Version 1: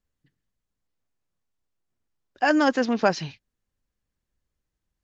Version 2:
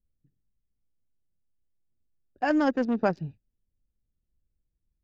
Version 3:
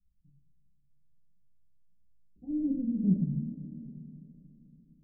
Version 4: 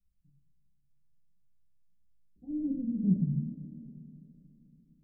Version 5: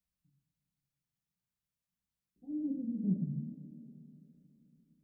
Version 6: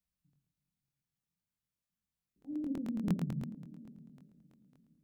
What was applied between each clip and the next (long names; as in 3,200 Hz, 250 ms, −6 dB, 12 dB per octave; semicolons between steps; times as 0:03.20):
adaptive Wiener filter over 41 samples; spectral tilt −2 dB per octave; level −5.5 dB
inverse Chebyshev low-pass filter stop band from 1,200 Hz, stop band 80 dB; coupled-rooms reverb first 0.6 s, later 3.6 s, from −14 dB, DRR −7.5 dB
dynamic equaliser 130 Hz, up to +6 dB, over −43 dBFS, Q 1.6; level −3 dB
high-pass filter 310 Hz 6 dB per octave
regular buffer underruns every 0.11 s, samples 1,024, repeat, from 0:00.31